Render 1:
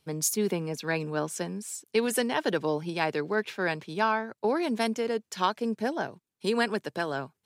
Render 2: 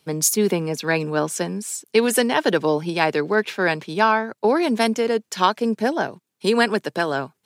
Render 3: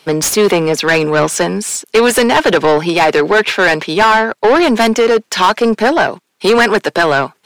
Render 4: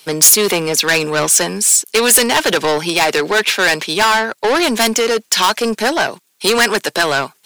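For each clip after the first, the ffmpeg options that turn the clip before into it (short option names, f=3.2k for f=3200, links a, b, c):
-af "highpass=130,volume=8.5dB"
-filter_complex "[0:a]asplit=2[a][b];[b]highpass=f=720:p=1,volume=24dB,asoftclip=type=tanh:threshold=-3dB[c];[a][c]amix=inputs=2:normalize=0,lowpass=f=3.2k:p=1,volume=-6dB,volume=2dB"
-af "crystalizer=i=4.5:c=0,volume=-6dB"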